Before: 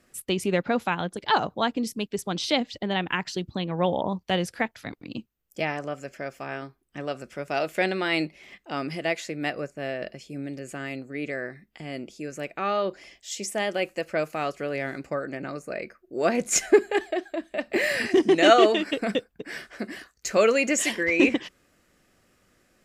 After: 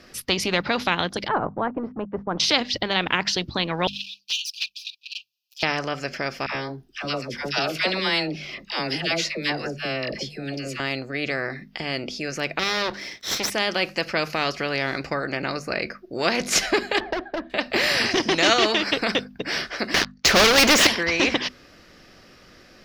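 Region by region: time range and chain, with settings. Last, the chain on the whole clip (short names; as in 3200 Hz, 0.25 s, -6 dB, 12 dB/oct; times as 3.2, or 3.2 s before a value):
1.28–2.4 G.711 law mismatch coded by A + LPF 1200 Hz 24 dB/oct
3.87–5.63 minimum comb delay 7.9 ms + brick-wall FIR high-pass 2400 Hz + envelope flanger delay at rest 8.6 ms, full sweep at -31.5 dBFS
6.46–10.8 dispersion lows, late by 90 ms, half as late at 810 Hz + cascading phaser falling 1.4 Hz
12.59–13.5 minimum comb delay 0.53 ms + HPF 150 Hz 6 dB/oct
17–17.5 LPF 1000 Hz + hard clip -26 dBFS + three-band squash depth 40%
19.94–20.87 LPF 3600 Hz + sample leveller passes 5
whole clip: resonant high shelf 6400 Hz -8 dB, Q 3; notches 50/100/150/200/250 Hz; spectral compressor 2:1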